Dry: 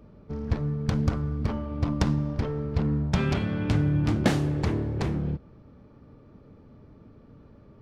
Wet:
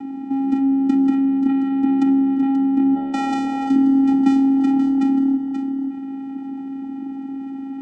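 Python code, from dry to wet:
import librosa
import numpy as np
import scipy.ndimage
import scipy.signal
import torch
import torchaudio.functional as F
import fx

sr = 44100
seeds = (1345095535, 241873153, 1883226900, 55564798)

y = fx.spec_erase(x, sr, start_s=1.26, length_s=1.88, low_hz=1500.0, high_hz=5100.0)
y = fx.vocoder(y, sr, bands=4, carrier='square', carrier_hz=271.0)
y = fx.low_shelf_res(y, sr, hz=390.0, db=-8.0, q=3.0, at=(2.94, 3.69), fade=0.02)
y = y + 10.0 ** (-13.5 / 20.0) * np.pad(y, (int(532 * sr / 1000.0), 0))[:len(y)]
y = fx.env_flatten(y, sr, amount_pct=50)
y = F.gain(torch.from_numpy(y), 6.5).numpy()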